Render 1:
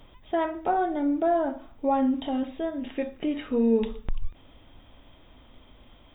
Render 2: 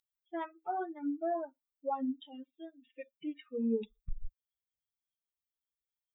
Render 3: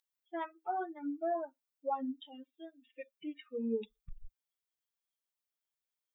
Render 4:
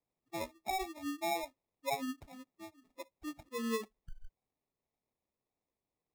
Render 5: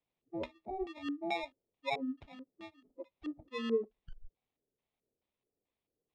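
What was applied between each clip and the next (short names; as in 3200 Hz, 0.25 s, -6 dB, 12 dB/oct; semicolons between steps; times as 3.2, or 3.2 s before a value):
per-bin expansion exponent 3; gain -7 dB
low shelf 220 Hz -11 dB; gain +1 dB
sample-and-hold 29×; gain -1 dB
LFO low-pass square 2.3 Hz 450–3200 Hz; gain -1 dB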